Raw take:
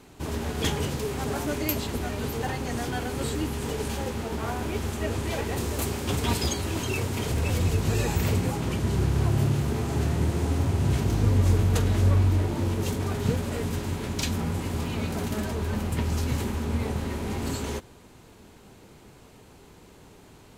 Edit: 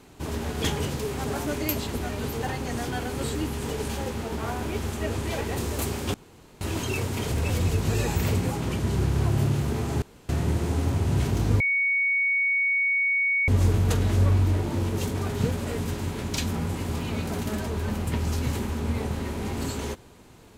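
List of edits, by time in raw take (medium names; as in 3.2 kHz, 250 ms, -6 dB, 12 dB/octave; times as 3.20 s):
6.14–6.61 s: room tone
10.02 s: insert room tone 0.27 s
11.33 s: add tone 2.23 kHz -20.5 dBFS 1.88 s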